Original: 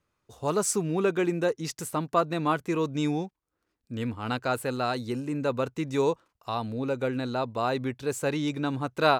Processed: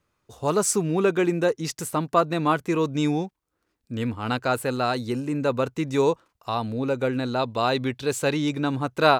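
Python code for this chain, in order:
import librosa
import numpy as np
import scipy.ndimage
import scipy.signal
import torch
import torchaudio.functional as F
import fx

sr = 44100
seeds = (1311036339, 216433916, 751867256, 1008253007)

y = fx.peak_eq(x, sr, hz=3600.0, db=6.5, octaves=1.1, at=(7.39, 8.33))
y = F.gain(torch.from_numpy(y), 4.0).numpy()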